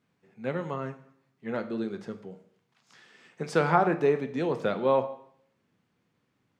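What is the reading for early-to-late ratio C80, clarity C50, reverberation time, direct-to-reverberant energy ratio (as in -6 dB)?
16.5 dB, 13.0 dB, 0.65 s, 8.0 dB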